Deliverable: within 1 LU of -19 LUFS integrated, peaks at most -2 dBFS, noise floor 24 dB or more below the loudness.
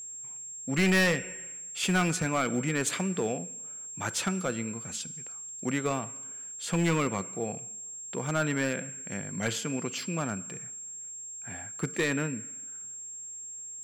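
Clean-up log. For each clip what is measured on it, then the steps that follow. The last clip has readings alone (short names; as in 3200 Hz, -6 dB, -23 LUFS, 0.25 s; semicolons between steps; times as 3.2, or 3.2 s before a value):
clipped 0.8%; flat tops at -20.5 dBFS; steady tone 7500 Hz; tone level -39 dBFS; loudness -31.5 LUFS; peak -20.5 dBFS; loudness target -19.0 LUFS
-> clip repair -20.5 dBFS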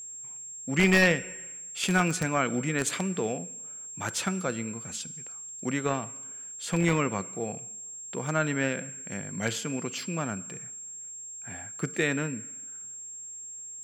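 clipped 0.0%; steady tone 7500 Hz; tone level -39 dBFS
-> notch 7500 Hz, Q 30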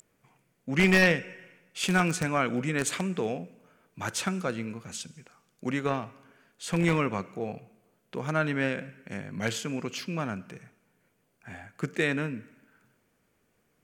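steady tone none; loudness -29.0 LUFS; peak -11.0 dBFS; loudness target -19.0 LUFS
-> gain +10 dB; limiter -2 dBFS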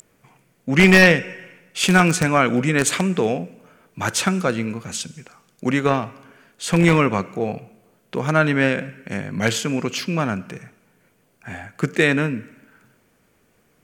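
loudness -19.5 LUFS; peak -2.0 dBFS; noise floor -62 dBFS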